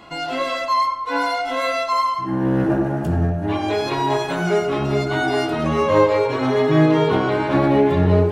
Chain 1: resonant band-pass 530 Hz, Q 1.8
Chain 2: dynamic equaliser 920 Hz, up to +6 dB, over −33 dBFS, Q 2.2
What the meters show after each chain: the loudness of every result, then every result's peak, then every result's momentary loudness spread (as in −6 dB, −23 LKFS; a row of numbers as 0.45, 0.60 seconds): −24.5, −18.0 LKFS; −7.0, −2.0 dBFS; 9, 6 LU